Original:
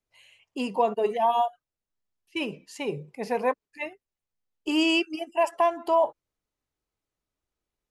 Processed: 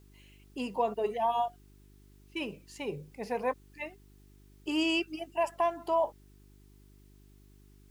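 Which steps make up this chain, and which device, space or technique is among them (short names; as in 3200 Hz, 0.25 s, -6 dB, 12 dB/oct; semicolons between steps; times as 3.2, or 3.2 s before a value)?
video cassette with head-switching buzz (buzz 50 Hz, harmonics 8, -52 dBFS -5 dB/oct; white noise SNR 36 dB); gain -6 dB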